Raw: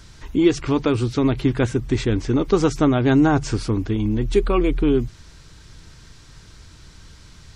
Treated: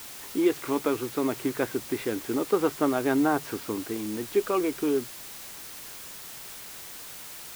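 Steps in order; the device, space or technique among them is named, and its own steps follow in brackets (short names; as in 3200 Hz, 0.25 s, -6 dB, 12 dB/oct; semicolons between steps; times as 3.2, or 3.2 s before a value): wax cylinder (BPF 330–2300 Hz; wow and flutter; white noise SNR 13 dB); gain -4 dB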